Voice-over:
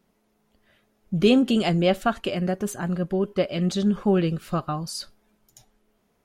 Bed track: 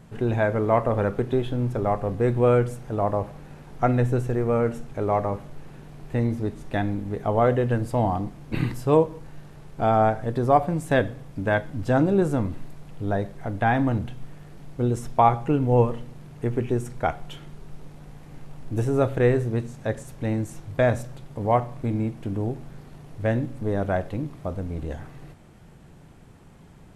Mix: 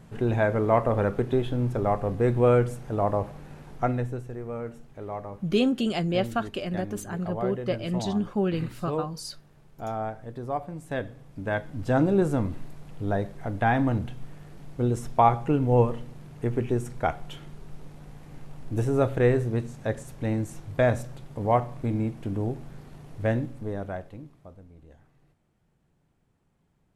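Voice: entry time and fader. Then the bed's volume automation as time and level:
4.30 s, -5.0 dB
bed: 3.7 s -1 dB
4.24 s -12 dB
10.72 s -12 dB
12.04 s -1.5 dB
23.31 s -1.5 dB
24.74 s -20.5 dB

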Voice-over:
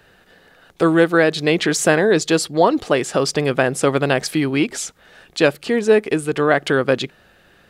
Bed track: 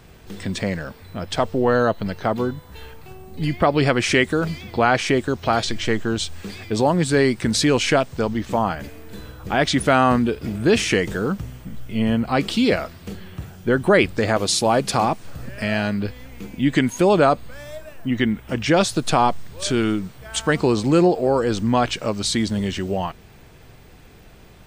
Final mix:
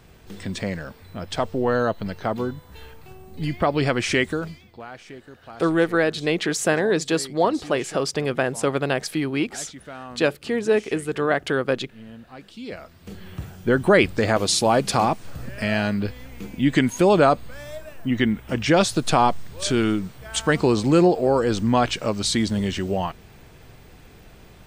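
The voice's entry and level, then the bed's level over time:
4.80 s, -5.5 dB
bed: 4.31 s -3.5 dB
4.85 s -22 dB
12.48 s -22 dB
13.3 s -0.5 dB

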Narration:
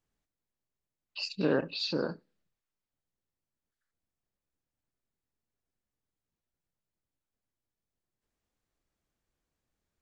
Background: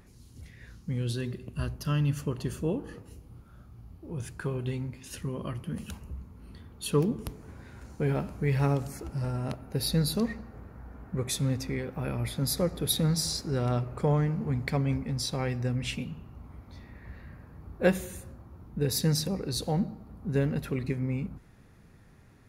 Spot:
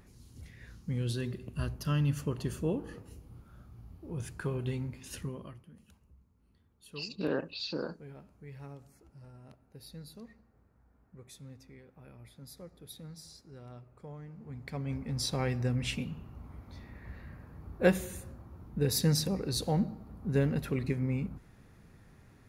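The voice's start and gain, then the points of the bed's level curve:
5.80 s, -4.5 dB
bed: 5.21 s -2 dB
5.74 s -21 dB
14.18 s -21 dB
15.25 s -1 dB

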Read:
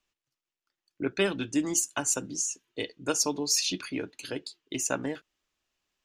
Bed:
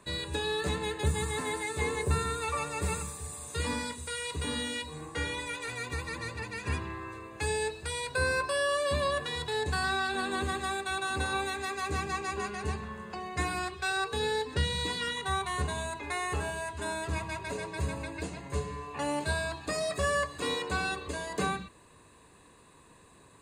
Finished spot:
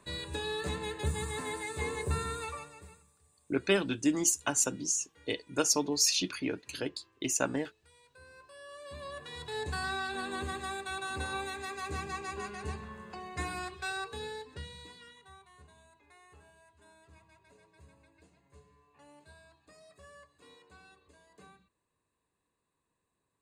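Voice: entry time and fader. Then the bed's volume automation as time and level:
2.50 s, -0.5 dB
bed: 2.41 s -4 dB
3.03 s -27.5 dB
8.26 s -27.5 dB
9.6 s -5 dB
13.87 s -5 dB
15.48 s -26 dB

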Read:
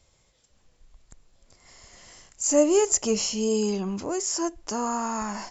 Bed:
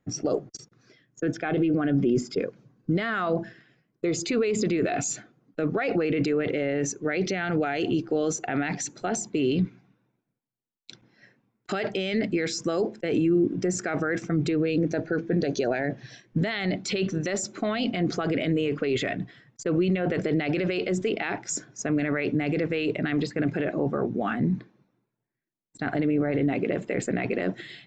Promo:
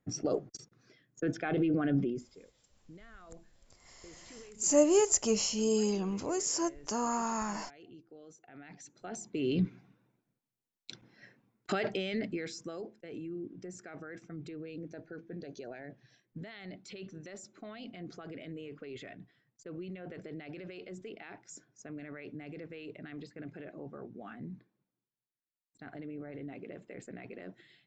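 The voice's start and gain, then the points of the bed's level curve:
2.20 s, -4.5 dB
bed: 1.99 s -5.5 dB
2.38 s -28 dB
8.41 s -28 dB
9.79 s -1 dB
11.58 s -1 dB
13 s -19 dB

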